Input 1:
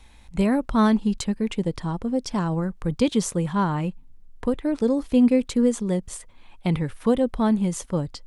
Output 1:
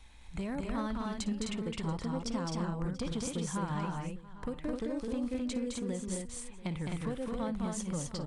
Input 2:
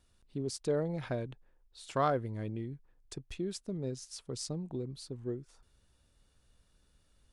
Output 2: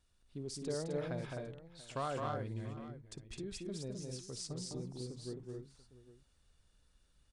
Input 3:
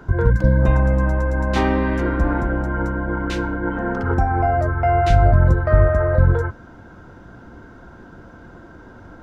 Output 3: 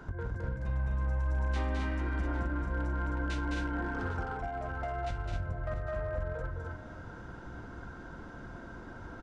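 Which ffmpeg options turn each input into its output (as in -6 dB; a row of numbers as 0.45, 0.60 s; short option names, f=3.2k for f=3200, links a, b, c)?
-filter_complex "[0:a]equalizer=f=320:t=o:w=2.8:g=-3.5,acompressor=threshold=-28dB:ratio=20,volume=25.5dB,asoftclip=hard,volume=-25.5dB,asplit=2[a][b];[b]aecho=0:1:57|211|259|685|803:0.133|0.668|0.631|0.112|0.141[c];[a][c]amix=inputs=2:normalize=0,aresample=22050,aresample=44100,volume=-4.5dB"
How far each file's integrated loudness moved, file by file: -13.0, -5.5, -16.5 LU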